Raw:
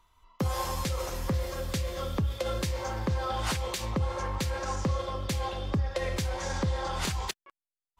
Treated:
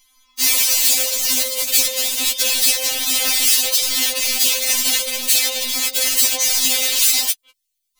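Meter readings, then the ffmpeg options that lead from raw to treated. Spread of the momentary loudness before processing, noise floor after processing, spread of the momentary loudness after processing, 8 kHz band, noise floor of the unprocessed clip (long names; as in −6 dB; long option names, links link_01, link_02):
2 LU, −75 dBFS, 4 LU, +26.0 dB, below −85 dBFS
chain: -af "aeval=exprs='(mod(22.4*val(0)+1,2)-1)/22.4':channel_layout=same,aexciter=amount=8.9:drive=3.2:freq=2100,afftfilt=real='re*3.46*eq(mod(b,12),0)':imag='im*3.46*eq(mod(b,12),0)':win_size=2048:overlap=0.75,volume=2dB"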